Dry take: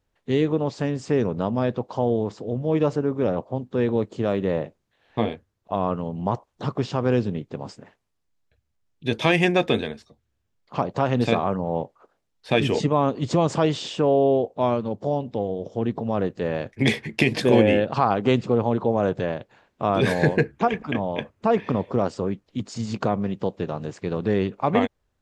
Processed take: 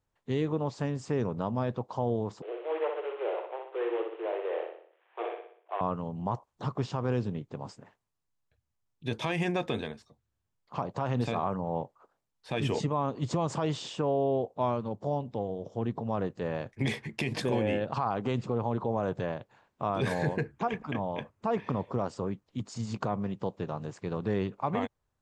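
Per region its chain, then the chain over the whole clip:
2.42–5.81 s: CVSD coder 16 kbps + Chebyshev high-pass 330 Hz, order 10 + feedback delay 61 ms, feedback 48%, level -5 dB
whole clip: graphic EQ 125/1000/8000 Hz +5/+6/+4 dB; peak limiter -10 dBFS; trim -9 dB

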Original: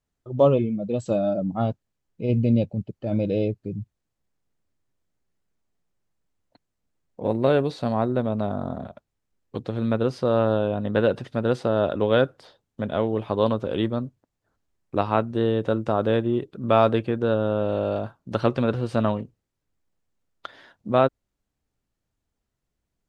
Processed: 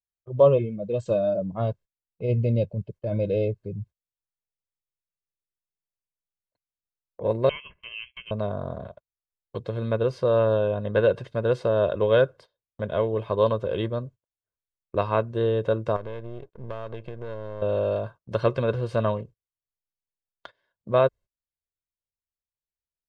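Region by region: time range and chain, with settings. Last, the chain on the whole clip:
7.49–8.31 s: steep high-pass 770 Hz + compression 2:1, threshold -32 dBFS + frequency inversion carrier 3.7 kHz
15.96–17.62 s: partial rectifier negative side -12 dB + treble shelf 5.4 kHz -7 dB + compression 5:1, threshold -29 dBFS
whole clip: treble shelf 5.2 kHz -6 dB; comb 1.9 ms, depth 64%; gate -40 dBFS, range -23 dB; trim -2.5 dB

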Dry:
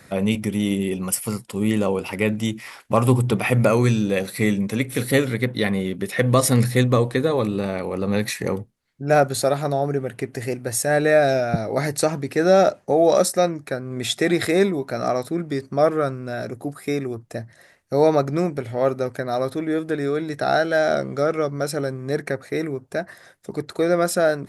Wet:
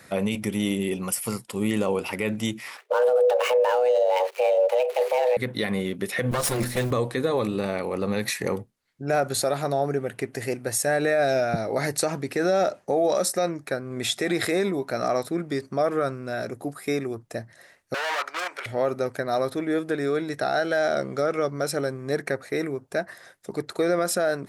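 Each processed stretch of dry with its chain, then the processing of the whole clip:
2.77–5.37 s: dead-time distortion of 0.12 ms + tone controls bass +12 dB, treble -8 dB + frequency shift +370 Hz
6.31–6.91 s: comb filter that takes the minimum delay 5.7 ms + modulation noise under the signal 29 dB
17.94–18.66 s: level held to a coarse grid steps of 23 dB + overdrive pedal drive 37 dB, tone 2.3 kHz, clips at -12 dBFS + Chebyshev high-pass 1.3 kHz
whole clip: bass shelf 230 Hz -7 dB; peak limiter -14 dBFS

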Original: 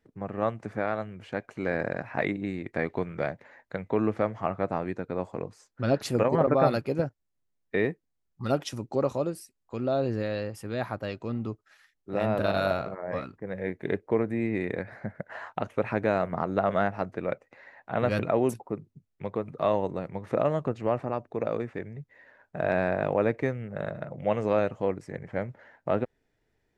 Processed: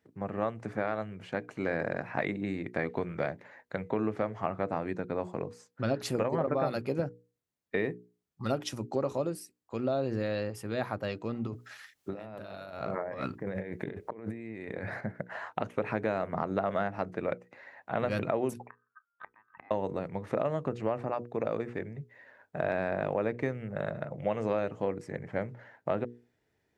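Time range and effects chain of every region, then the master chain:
11.47–15.01 s: compressor with a negative ratio -39 dBFS + tape noise reduction on one side only encoder only
18.67–19.71 s: ring modulator 1.4 kHz + inverted gate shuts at -28 dBFS, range -27 dB + distance through air 470 m
whole clip: high-pass 73 Hz; hum notches 60/120/180/240/300/360/420/480 Hz; compression 4:1, threshold -26 dBFS

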